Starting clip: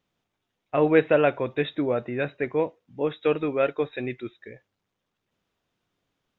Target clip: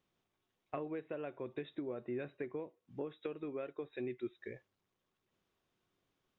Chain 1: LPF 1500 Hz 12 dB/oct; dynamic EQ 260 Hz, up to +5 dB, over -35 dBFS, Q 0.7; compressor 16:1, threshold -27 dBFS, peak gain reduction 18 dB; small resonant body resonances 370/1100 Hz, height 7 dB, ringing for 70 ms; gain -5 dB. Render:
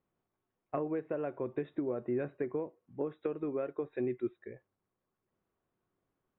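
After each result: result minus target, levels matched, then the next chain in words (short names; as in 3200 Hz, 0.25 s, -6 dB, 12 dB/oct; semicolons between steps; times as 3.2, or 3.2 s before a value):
compressor: peak gain reduction -7 dB; 2000 Hz band -5.5 dB
LPF 1500 Hz 12 dB/oct; dynamic EQ 260 Hz, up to +5 dB, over -35 dBFS, Q 0.7; compressor 16:1, threshold -34 dBFS, peak gain reduction 24.5 dB; small resonant body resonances 370/1100 Hz, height 7 dB, ringing for 70 ms; gain -5 dB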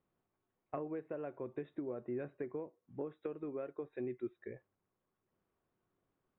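2000 Hz band -5.0 dB
dynamic EQ 260 Hz, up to +5 dB, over -35 dBFS, Q 0.7; compressor 16:1, threshold -34 dBFS, peak gain reduction 24.5 dB; small resonant body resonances 370/1100 Hz, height 7 dB, ringing for 70 ms; gain -5 dB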